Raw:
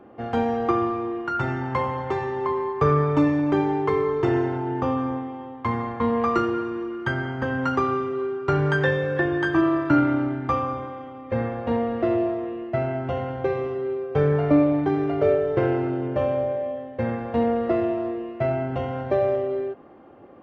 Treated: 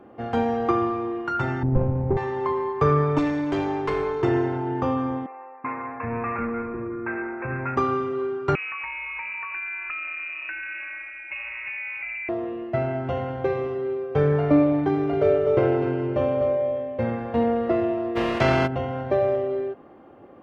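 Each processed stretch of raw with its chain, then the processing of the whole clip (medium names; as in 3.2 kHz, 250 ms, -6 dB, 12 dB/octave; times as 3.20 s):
1.63–2.17 s: median filter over 41 samples + low-pass 1.1 kHz + tilt EQ -3.5 dB/octave
3.18–4.22 s: treble shelf 3 kHz +10.5 dB + valve stage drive 17 dB, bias 0.6
5.26–7.77 s: hard clipper -24.5 dBFS + brick-wall FIR low-pass 2.7 kHz + bands offset in time highs, lows 380 ms, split 490 Hz
8.55–12.29 s: compression, threshold -30 dBFS + frequency inversion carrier 2.7 kHz
14.88–17.17 s: band-stop 1.7 kHz, Q 9.9 + delay 250 ms -7.5 dB
18.15–18.66 s: spectral contrast reduction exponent 0.51 + distance through air 80 m + level flattener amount 50%
whole clip: none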